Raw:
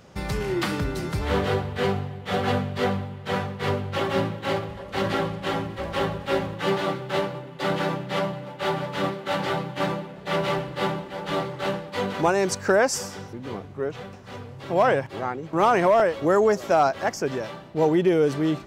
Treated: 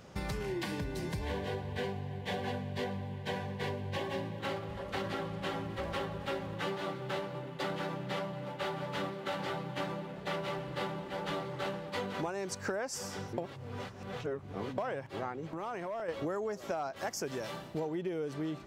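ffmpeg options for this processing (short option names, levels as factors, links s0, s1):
-filter_complex "[0:a]asettb=1/sr,asplit=3[s0][s1][s2];[s0]atrim=end=0.464[s3];[s1]atrim=start=0.46:end=4.4,asetpts=PTS-STARTPTS,afade=t=in:d=0.004:c=qsin,afade=t=out:st=3.936:d=0.004:c=qsin,asuperstop=centerf=1300:order=8:qfactor=4.3[s4];[s2]atrim=start=4.396[s5];[s3][s4]acrossfade=d=0.004:c1=hsin:c2=qsin[s6];[s6][s5]acrossfade=d=0.004:c1=qsin:c2=hsin,asplit=3[s7][s8][s9];[s7]afade=t=out:st=15.5:d=0.02[s10];[s8]acompressor=threshold=0.0178:ratio=4:attack=3.2:release=140:knee=1:detection=peak,afade=t=in:st=15.5:d=0.02,afade=t=out:st=16.08:d=0.02[s11];[s9]afade=t=in:st=16.08:d=0.02[s12];[s10][s11][s12]amix=inputs=3:normalize=0,asettb=1/sr,asplit=3[s13][s14][s15];[s13]atrim=end=16.964[s16];[s14]atrim=start=16.96:end=17.8,asetpts=PTS-STARTPTS,afade=t=in:d=0.004:c=qsin,afade=t=out:st=0.836:d=0.004:c=qsin,highshelf=f=5300:g=11.5[s17];[s15]atrim=start=17.796[s18];[s16][s17]acrossfade=d=0.004:c1=hsin:c2=qsin[s19];[s19][s18]acrossfade=d=0.004:c1=qsin:c2=hsin,asplit=3[s20][s21][s22];[s20]atrim=end=13.382[s23];[s21]atrim=start=13.378:end=14.782,asetpts=PTS-STARTPTS,areverse[s24];[s22]atrim=start=14.778[s25];[s23][s24]acrossfade=d=0.004:c1=hsin:c2=hsin[s26];[s26][s25]acrossfade=d=0.004:c1=hsin:c2=hsin,acompressor=threshold=0.0316:ratio=10,volume=0.708"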